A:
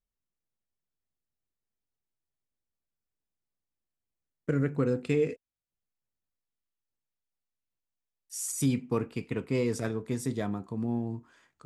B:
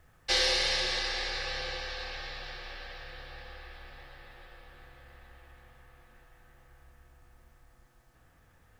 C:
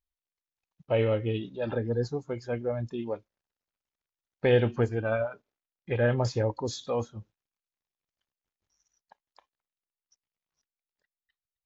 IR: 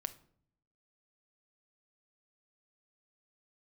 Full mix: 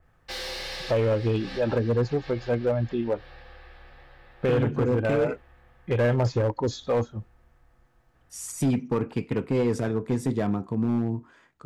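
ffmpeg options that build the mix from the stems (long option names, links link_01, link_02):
-filter_complex "[0:a]volume=2dB[link_01];[1:a]asoftclip=type=tanh:threshold=-28.5dB,adynamicequalizer=threshold=0.00447:dfrequency=2900:dqfactor=0.7:tfrequency=2900:tqfactor=0.7:attack=5:release=100:ratio=0.375:range=2:mode=boostabove:tftype=highshelf,volume=0dB[link_02];[2:a]volume=1.5dB,asplit=2[link_03][link_04];[link_04]apad=whole_len=387984[link_05];[link_02][link_05]sidechaincompress=threshold=-35dB:ratio=8:attack=29:release=148[link_06];[link_01][link_03]amix=inputs=2:normalize=0,acontrast=33,alimiter=limit=-13dB:level=0:latency=1:release=131,volume=0dB[link_07];[link_06][link_07]amix=inputs=2:normalize=0,highshelf=frequency=3600:gain=-11.5,asoftclip=type=hard:threshold=-18dB"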